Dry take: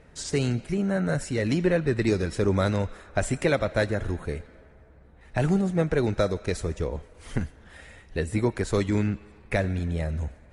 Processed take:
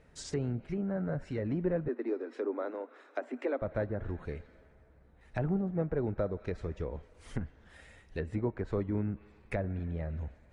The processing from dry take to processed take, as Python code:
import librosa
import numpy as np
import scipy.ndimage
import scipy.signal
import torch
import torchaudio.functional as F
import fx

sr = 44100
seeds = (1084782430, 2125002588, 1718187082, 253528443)

y = fx.env_lowpass_down(x, sr, base_hz=1100.0, full_db=-21.5)
y = fx.cheby1_highpass(y, sr, hz=240.0, order=8, at=(1.88, 3.62))
y = y * 10.0 ** (-8.0 / 20.0)